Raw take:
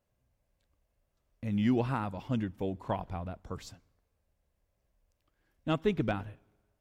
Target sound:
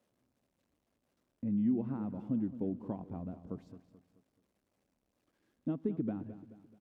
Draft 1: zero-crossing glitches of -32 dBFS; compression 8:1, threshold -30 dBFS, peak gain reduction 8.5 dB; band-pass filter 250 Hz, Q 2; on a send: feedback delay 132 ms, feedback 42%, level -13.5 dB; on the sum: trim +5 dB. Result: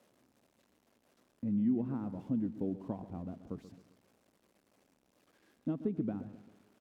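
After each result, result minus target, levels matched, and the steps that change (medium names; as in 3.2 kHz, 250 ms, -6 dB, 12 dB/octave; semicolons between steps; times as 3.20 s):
echo 84 ms early; zero-crossing glitches: distortion +10 dB
change: feedback delay 216 ms, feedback 42%, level -13.5 dB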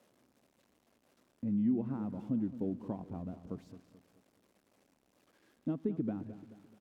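zero-crossing glitches: distortion +10 dB
change: zero-crossing glitches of -42.5 dBFS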